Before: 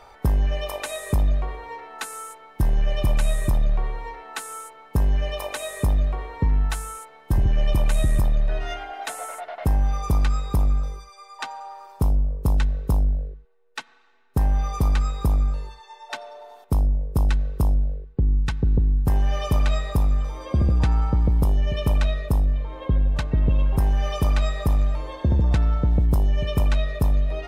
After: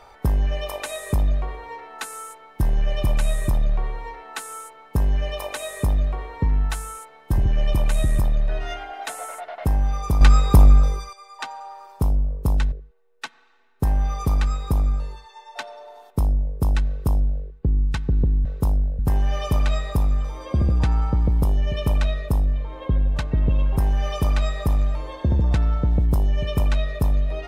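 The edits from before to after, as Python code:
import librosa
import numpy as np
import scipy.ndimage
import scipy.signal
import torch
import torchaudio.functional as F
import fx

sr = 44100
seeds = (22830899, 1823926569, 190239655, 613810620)

y = fx.edit(x, sr, fx.clip_gain(start_s=10.21, length_s=0.92, db=9.0),
    fx.move(start_s=12.72, length_s=0.54, to_s=18.99), tone=tone)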